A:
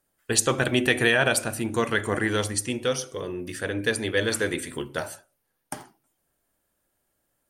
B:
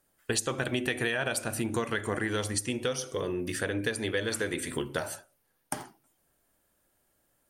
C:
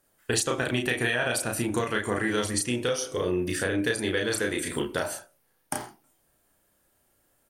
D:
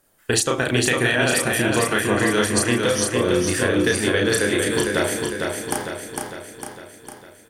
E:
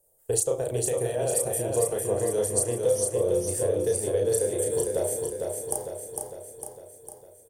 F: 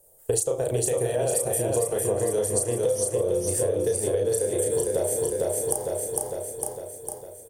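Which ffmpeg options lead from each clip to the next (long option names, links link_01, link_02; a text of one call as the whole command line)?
ffmpeg -i in.wav -af "acompressor=threshold=-30dB:ratio=5,volume=2.5dB" out.wav
ffmpeg -i in.wav -filter_complex "[0:a]asplit=2[link_01][link_02];[link_02]adelay=33,volume=-3dB[link_03];[link_01][link_03]amix=inputs=2:normalize=0,volume=2dB" out.wav
ffmpeg -i in.wav -af "aecho=1:1:454|908|1362|1816|2270|2724|3178|3632:0.631|0.353|0.198|0.111|0.0621|0.0347|0.0195|0.0109,volume=6dB" out.wav
ffmpeg -i in.wav -af "firequalizer=gain_entry='entry(110,0);entry(250,-15);entry(470,7);entry(1400,-21);entry(3900,-14);entry(8200,5)':delay=0.05:min_phase=1,volume=-6.5dB" out.wav
ffmpeg -i in.wav -af "acompressor=threshold=-31dB:ratio=5,volume=9dB" out.wav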